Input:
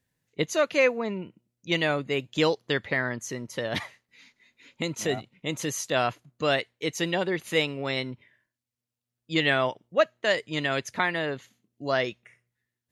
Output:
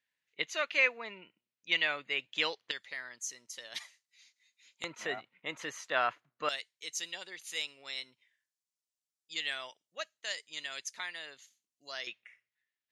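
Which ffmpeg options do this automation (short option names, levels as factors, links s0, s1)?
-af "asetnsamples=n=441:p=0,asendcmd='2.71 bandpass f 6800;4.84 bandpass f 1500;6.49 bandpass f 6700;12.07 bandpass f 2600',bandpass=f=2500:t=q:w=1.2:csg=0"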